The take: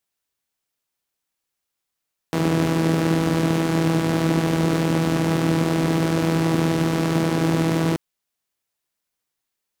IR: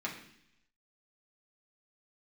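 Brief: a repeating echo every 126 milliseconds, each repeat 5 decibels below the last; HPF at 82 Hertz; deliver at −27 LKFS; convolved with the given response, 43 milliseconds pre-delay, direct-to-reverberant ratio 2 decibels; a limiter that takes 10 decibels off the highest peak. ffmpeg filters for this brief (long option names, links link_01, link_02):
-filter_complex "[0:a]highpass=82,alimiter=limit=-18dB:level=0:latency=1,aecho=1:1:126|252|378|504|630|756|882:0.562|0.315|0.176|0.0988|0.0553|0.031|0.0173,asplit=2[link_01][link_02];[1:a]atrim=start_sample=2205,adelay=43[link_03];[link_02][link_03]afir=irnorm=-1:irlink=0,volume=-5.5dB[link_04];[link_01][link_04]amix=inputs=2:normalize=0,volume=-3.5dB"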